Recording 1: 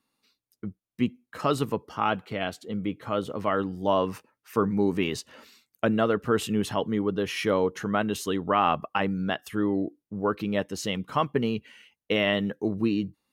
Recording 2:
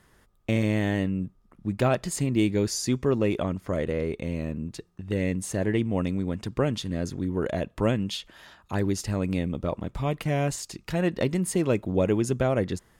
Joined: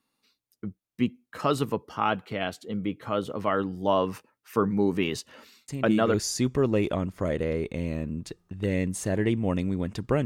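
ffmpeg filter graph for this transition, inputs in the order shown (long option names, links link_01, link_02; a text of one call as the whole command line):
ffmpeg -i cue0.wav -i cue1.wav -filter_complex "[1:a]asplit=2[link_01][link_02];[0:a]apad=whole_dur=10.25,atrim=end=10.25,atrim=end=6.142[link_03];[link_02]atrim=start=2.618:end=6.73[link_04];[link_01]atrim=start=2.16:end=2.62,asetpts=PTS-STARTPTS,volume=-7.5dB,afade=type=in:duration=0.004:curve=hsin,afade=type=out:start_time=0.456:duration=0.004:curve=hsin,adelay=5680[link_05];[link_03][link_04]acrossfade=duration=0.004:curve1=hsin:curve2=hsin[link_06];[link_06][link_05]amix=inputs=2:normalize=0" out.wav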